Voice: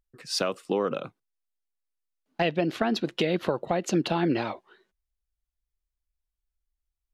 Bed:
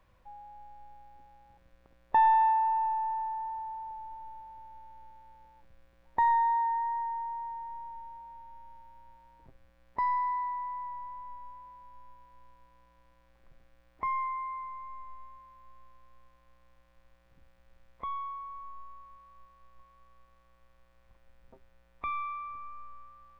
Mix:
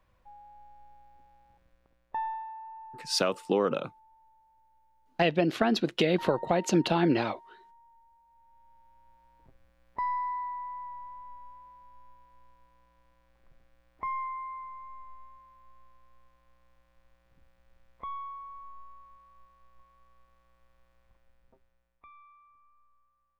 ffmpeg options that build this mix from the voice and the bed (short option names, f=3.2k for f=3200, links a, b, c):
-filter_complex "[0:a]adelay=2800,volume=0.5dB[a];[1:a]volume=12dB,afade=t=out:st=1.55:d=0.9:silence=0.199526,afade=t=in:st=8.26:d=1.37:silence=0.177828,afade=t=out:st=20.9:d=1.18:silence=0.11885[b];[a][b]amix=inputs=2:normalize=0"